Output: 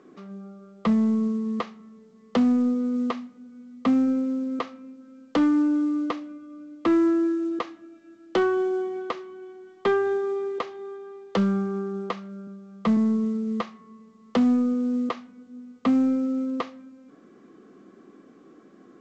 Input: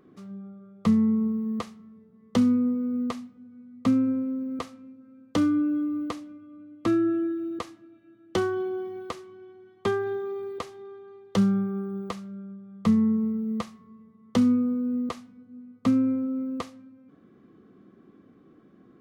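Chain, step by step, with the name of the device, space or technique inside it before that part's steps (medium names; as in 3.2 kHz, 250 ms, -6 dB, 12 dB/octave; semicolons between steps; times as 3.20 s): 12.47–12.97 s: high-pass 83 Hz 24 dB/octave; telephone (band-pass 270–3300 Hz; saturation -20.5 dBFS, distortion -19 dB; trim +6.5 dB; A-law 128 kbps 16 kHz)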